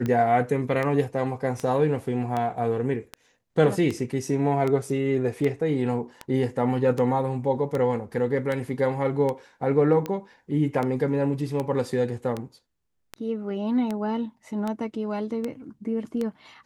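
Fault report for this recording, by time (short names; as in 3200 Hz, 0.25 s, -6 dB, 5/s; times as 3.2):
tick 78 rpm -16 dBFS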